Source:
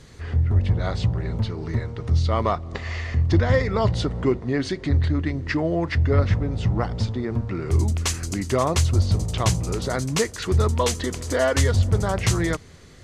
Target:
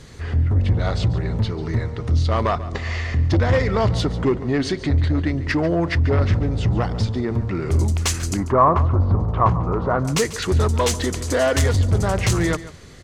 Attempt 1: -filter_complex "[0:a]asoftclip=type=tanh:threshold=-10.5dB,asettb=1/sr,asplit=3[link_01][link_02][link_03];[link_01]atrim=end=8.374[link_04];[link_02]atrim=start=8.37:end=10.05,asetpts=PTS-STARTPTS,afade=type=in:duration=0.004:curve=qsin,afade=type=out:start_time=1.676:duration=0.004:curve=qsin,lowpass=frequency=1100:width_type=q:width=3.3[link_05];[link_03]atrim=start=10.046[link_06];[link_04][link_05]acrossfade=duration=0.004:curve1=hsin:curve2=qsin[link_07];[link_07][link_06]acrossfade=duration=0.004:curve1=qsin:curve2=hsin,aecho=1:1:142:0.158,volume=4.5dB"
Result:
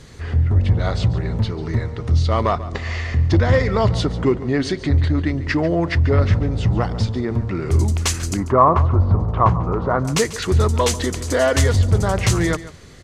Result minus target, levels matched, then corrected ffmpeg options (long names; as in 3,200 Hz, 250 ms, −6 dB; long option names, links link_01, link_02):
soft clipping: distortion −8 dB
-filter_complex "[0:a]asoftclip=type=tanh:threshold=-16.5dB,asettb=1/sr,asplit=3[link_01][link_02][link_03];[link_01]atrim=end=8.374[link_04];[link_02]atrim=start=8.37:end=10.05,asetpts=PTS-STARTPTS,afade=type=in:duration=0.004:curve=qsin,afade=type=out:start_time=1.676:duration=0.004:curve=qsin,lowpass=frequency=1100:width_type=q:width=3.3[link_05];[link_03]atrim=start=10.046[link_06];[link_04][link_05]acrossfade=duration=0.004:curve1=hsin:curve2=qsin[link_07];[link_07][link_06]acrossfade=duration=0.004:curve1=qsin:curve2=hsin,aecho=1:1:142:0.158,volume=4.5dB"